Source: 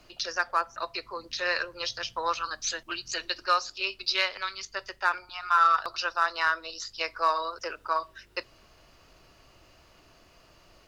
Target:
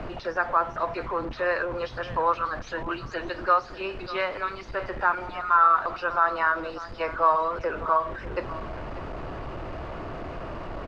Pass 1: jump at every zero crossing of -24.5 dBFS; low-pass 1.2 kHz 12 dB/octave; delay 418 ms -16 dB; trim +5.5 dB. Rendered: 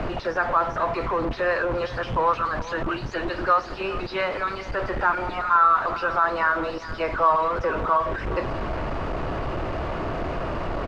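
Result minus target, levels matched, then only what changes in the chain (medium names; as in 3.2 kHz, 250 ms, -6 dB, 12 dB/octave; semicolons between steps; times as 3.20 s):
echo 178 ms early; jump at every zero crossing: distortion +6 dB
change: jump at every zero crossing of -32.5 dBFS; change: delay 596 ms -16 dB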